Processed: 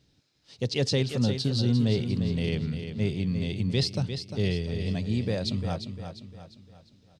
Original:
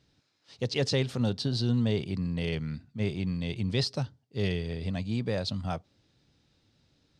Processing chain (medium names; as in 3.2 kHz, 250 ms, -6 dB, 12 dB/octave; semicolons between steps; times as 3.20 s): peaking EQ 1.2 kHz -6 dB 2 oct; on a send: feedback delay 350 ms, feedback 43%, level -8.5 dB; on the sum: trim +3 dB